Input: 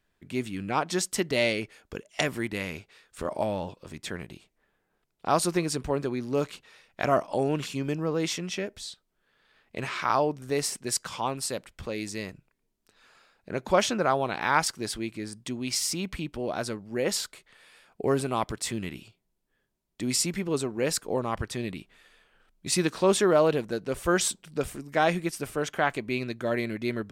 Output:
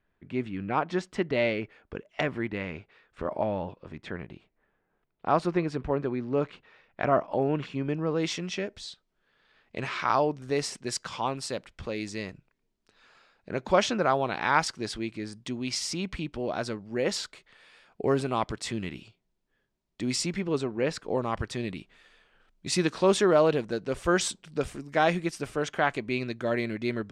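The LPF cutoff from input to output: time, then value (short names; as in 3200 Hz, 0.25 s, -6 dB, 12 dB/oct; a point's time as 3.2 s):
7.85 s 2300 Hz
8.33 s 5800 Hz
20.21 s 5800 Hz
20.92 s 3100 Hz
21.22 s 6800 Hz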